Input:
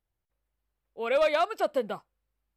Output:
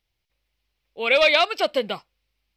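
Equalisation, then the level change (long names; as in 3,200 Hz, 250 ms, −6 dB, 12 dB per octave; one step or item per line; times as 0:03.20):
flat-topped bell 3,400 Hz +12 dB
+4.5 dB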